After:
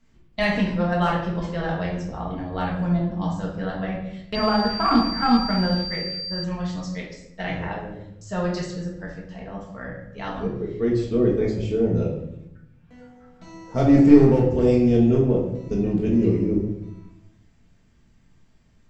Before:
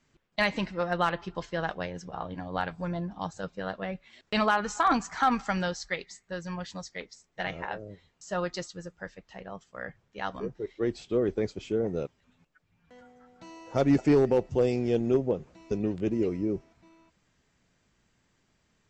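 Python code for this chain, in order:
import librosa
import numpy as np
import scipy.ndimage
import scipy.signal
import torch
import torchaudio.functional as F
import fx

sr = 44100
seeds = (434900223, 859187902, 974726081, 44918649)

y = fx.low_shelf(x, sr, hz=190.0, db=11.5)
y = fx.room_shoebox(y, sr, seeds[0], volume_m3=240.0, walls='mixed', distance_m=1.6)
y = fx.pwm(y, sr, carrier_hz=4700.0, at=(4.35, 6.44))
y = y * librosa.db_to_amplitude(-2.0)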